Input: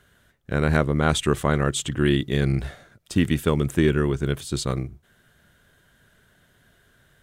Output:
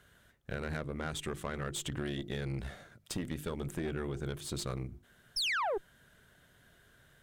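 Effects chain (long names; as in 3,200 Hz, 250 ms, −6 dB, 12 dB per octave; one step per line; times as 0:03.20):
mains-hum notches 50/100/150/200/250/300/350/400 Hz
downward compressor 6 to 1, threshold −30 dBFS, peak gain reduction 14.5 dB
sound drawn into the spectrogram fall, 0:05.36–0:05.78, 360–5,700 Hz −28 dBFS
tube saturation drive 28 dB, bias 0.65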